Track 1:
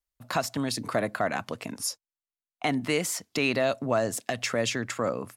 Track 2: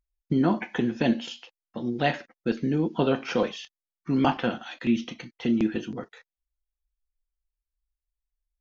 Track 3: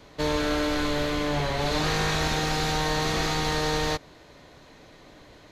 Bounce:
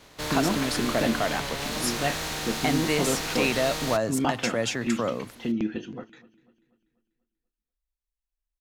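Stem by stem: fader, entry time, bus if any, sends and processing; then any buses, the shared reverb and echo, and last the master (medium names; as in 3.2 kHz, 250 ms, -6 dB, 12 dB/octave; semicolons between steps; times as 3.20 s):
0.0 dB, 0.00 s, no send, no echo send, none
-3.5 dB, 0.00 s, no send, echo send -22 dB, none
-2.0 dB, 0.00 s, no send, no echo send, spectral contrast reduction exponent 0.58; saturation -26 dBFS, distortion -11 dB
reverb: none
echo: feedback delay 244 ms, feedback 47%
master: wow and flutter 25 cents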